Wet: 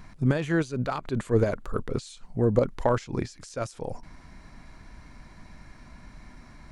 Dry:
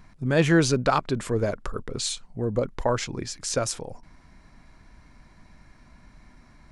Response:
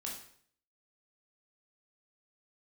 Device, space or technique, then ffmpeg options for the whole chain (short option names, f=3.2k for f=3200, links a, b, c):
de-esser from a sidechain: -filter_complex "[0:a]asplit=2[a][b];[b]highpass=4.7k,apad=whole_len=296032[c];[a][c]sidechaincompress=threshold=-53dB:ratio=4:attack=2.3:release=65,asettb=1/sr,asplit=3[d][e][f];[d]atrim=end=0.444[g];[e]atrim=start=0.44:end=1.89,asetpts=PTS-STARTPTS,afade=t=in:d=0.004:c=qsin,afade=t=out:st=1.446:d=0.004:c=qsin,bandreject=f=5.3k:w=8.8[h];[f]atrim=start=1.886[i];[g][h]acrossfade=d=0.004:c1=hsin:c2=qsin[j];[j][i]acrossfade=d=0.004:c1=qsin:c2=hsin,volume=4.5dB"